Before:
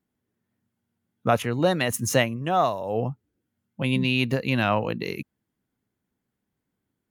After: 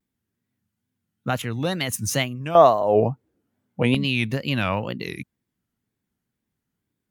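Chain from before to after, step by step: bell 590 Hz -7.5 dB 2.5 oct, from 2.55 s +8 dB, from 3.94 s -5 dB; wow and flutter 150 cents; gain +1.5 dB

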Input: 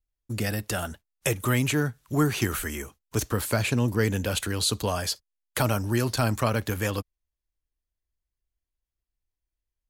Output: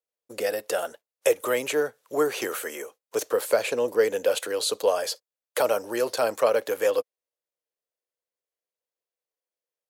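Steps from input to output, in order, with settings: resonant high-pass 500 Hz, resonance Q 4.9; gain -2 dB

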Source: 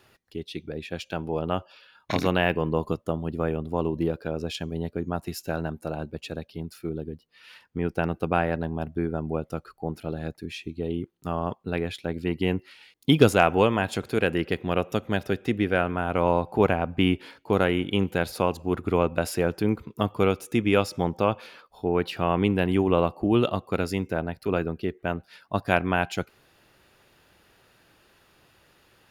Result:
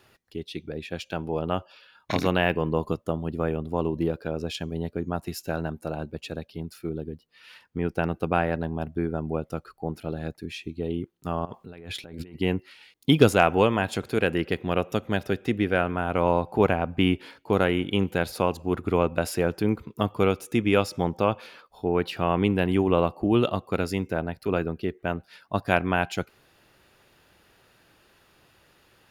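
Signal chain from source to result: 11.45–12.35 negative-ratio compressor -40 dBFS, ratio -1

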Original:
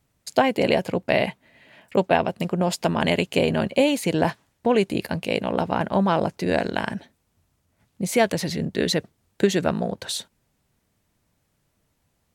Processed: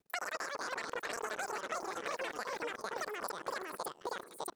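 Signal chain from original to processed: level quantiser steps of 23 dB; limiter -15.5 dBFS, peak gain reduction 7.5 dB; echoes that change speed 0.434 s, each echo -2 st, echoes 3; wide varispeed 2.71×; compressor, threshold -31 dBFS, peak gain reduction 11.5 dB; gain -5 dB

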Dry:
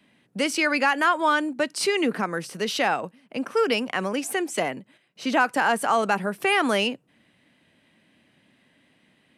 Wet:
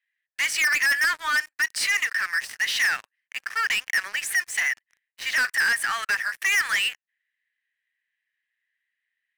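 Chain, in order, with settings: ladder high-pass 1700 Hz, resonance 80%; sample leveller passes 5; gain -3.5 dB

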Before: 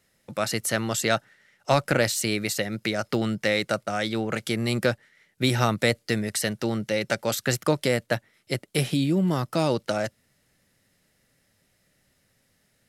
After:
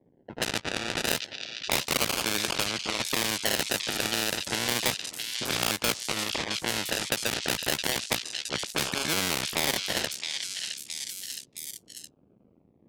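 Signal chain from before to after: cycle switcher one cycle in 2, muted; HPF 96 Hz 12 dB/oct; decimation with a swept rate 32×, swing 60% 0.31 Hz; weighting filter D; low-pass opened by the level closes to 330 Hz, open at -22.5 dBFS; soft clip -10 dBFS, distortion -11 dB; on a send: delay with a stepping band-pass 0.666 s, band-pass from 4000 Hz, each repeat 0.7 oct, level -4 dB; on the sum: spectral compressor 2:1; gain +3 dB

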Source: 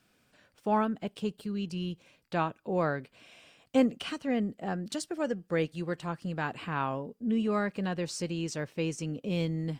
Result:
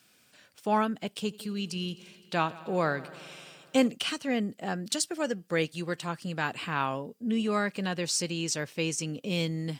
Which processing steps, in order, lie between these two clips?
HPF 94 Hz; high shelf 2200 Hz +11.5 dB; 1.22–3.88 multi-head echo 86 ms, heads first and second, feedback 71%, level -23 dB

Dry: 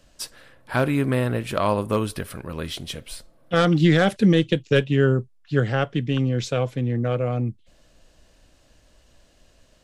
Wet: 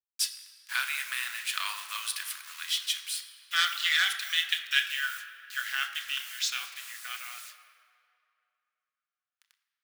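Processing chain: level-crossing sampler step -39.5 dBFS; Bessel high-pass 2400 Hz, order 6; on a send: reverb RT60 2.8 s, pre-delay 3 ms, DRR 4.5 dB; on the sum: gain +5 dB

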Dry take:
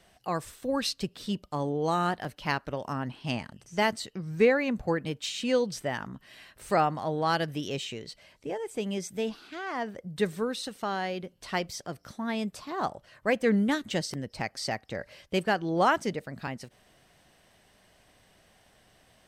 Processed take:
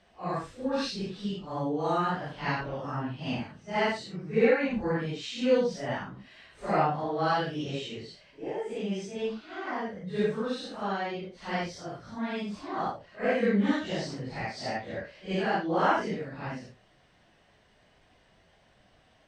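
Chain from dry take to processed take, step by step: phase scrambler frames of 0.2 s; air absorption 110 m

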